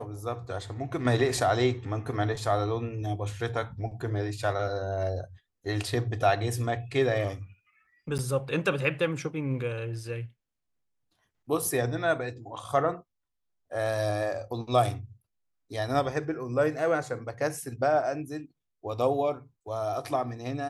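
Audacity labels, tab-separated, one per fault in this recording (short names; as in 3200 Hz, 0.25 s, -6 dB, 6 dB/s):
8.180000	8.190000	gap 9.7 ms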